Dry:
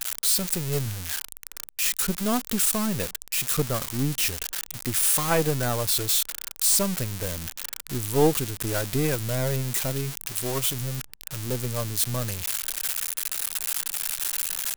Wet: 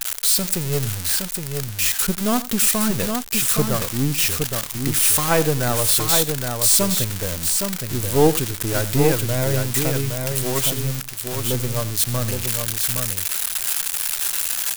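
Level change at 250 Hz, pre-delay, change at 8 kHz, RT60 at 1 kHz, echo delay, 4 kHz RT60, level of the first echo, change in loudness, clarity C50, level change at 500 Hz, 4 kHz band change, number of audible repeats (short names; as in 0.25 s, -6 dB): +5.5 dB, none, +5.5 dB, none, 88 ms, none, -17.0 dB, +5.5 dB, none, +6.0 dB, +5.5 dB, 2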